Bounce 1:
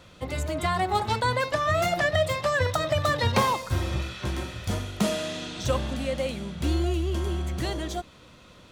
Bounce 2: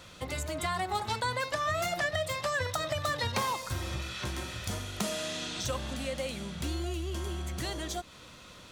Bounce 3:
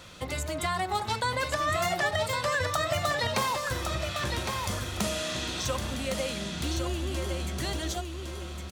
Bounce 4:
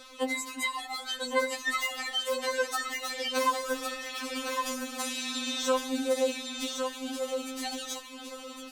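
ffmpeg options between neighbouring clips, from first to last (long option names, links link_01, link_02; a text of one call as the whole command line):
ffmpeg -i in.wav -af "bass=frequency=250:gain=1,treble=frequency=4000:gain=9,acompressor=threshold=-34dB:ratio=2,equalizer=frequency=1600:width_type=o:width=2.5:gain=5,volume=-3dB" out.wav
ffmpeg -i in.wav -af "aecho=1:1:1110|2220|3330:0.531|0.133|0.0332,volume=2.5dB" out.wav
ffmpeg -i in.wav -af "afftfilt=real='re*3.46*eq(mod(b,12),0)':imag='im*3.46*eq(mod(b,12),0)':win_size=2048:overlap=0.75,volume=2dB" out.wav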